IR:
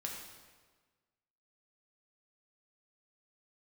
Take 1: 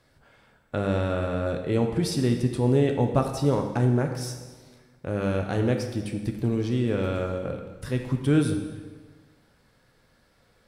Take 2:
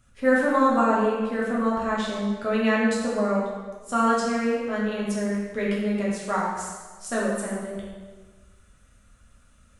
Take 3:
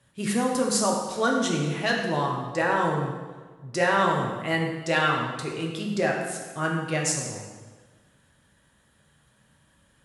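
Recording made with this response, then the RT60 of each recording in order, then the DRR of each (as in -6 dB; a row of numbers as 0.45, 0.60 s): 3; 1.4, 1.4, 1.4 s; 3.5, -6.0, -1.0 dB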